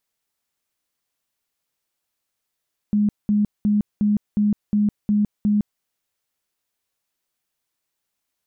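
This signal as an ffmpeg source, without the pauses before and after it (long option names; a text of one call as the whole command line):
ffmpeg -f lavfi -i "aevalsrc='0.178*sin(2*PI*208*mod(t,0.36))*lt(mod(t,0.36),33/208)':duration=2.88:sample_rate=44100" out.wav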